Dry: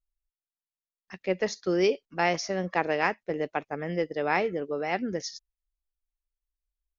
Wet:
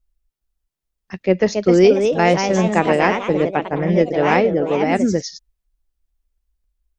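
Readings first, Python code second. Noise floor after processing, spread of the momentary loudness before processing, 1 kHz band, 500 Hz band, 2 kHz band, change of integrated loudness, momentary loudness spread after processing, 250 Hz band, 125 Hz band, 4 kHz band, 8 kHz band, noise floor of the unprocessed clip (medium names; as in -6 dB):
-81 dBFS, 8 LU, +10.0 dB, +12.5 dB, +7.5 dB, +12.0 dB, 7 LU, +14.5 dB, +16.0 dB, +8.0 dB, no reading, under -85 dBFS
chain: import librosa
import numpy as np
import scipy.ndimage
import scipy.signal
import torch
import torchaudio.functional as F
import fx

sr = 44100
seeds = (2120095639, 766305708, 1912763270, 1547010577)

y = fx.low_shelf(x, sr, hz=440.0, db=11.0)
y = fx.echo_pitch(y, sr, ms=416, semitones=2, count=3, db_per_echo=-6.0)
y = y * librosa.db_to_amplitude(6.0)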